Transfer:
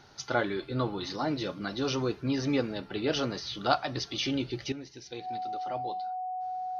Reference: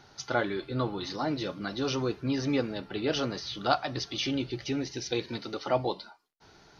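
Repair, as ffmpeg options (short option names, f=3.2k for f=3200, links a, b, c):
-af "bandreject=f=740:w=30,asetnsamples=n=441:p=0,asendcmd='4.72 volume volume 10.5dB',volume=0dB"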